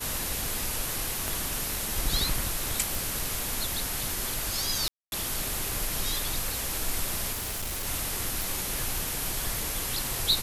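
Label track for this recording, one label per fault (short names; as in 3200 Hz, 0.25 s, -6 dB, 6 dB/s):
1.280000	1.280000	pop
2.950000	2.950000	pop
4.880000	5.120000	gap 0.241 s
7.320000	7.870000	clipped -29.5 dBFS
8.420000	8.420000	pop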